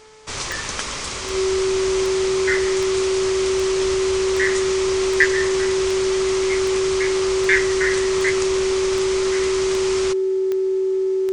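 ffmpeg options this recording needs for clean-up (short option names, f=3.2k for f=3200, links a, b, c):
-af "adeclick=t=4,bandreject=f=434.2:t=h:w=4,bandreject=f=868.4:t=h:w=4,bandreject=f=1.3026k:t=h:w=4,bandreject=f=1.7368k:t=h:w=4,bandreject=f=2.171k:t=h:w=4,bandreject=f=380:w=30"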